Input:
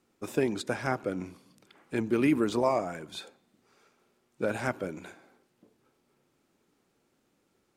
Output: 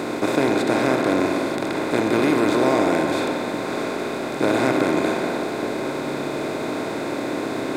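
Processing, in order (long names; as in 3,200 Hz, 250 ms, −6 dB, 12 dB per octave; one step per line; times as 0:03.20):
compressor on every frequency bin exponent 0.2
bucket-brigade delay 63 ms, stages 2,048, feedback 79%, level −9.5 dB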